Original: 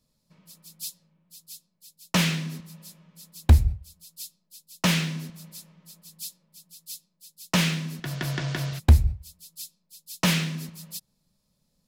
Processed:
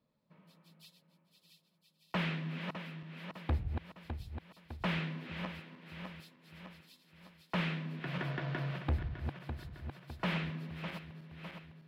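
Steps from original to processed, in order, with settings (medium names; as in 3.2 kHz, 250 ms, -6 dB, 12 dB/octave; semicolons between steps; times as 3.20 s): backward echo that repeats 303 ms, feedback 67%, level -11 dB; high-pass 310 Hz 6 dB/octave; in parallel at 0 dB: compression, threshold -42 dBFS, peak gain reduction 20.5 dB; on the sum: hard clipper -21.5 dBFS, distortion -11 dB; distance through air 480 m; trim -4 dB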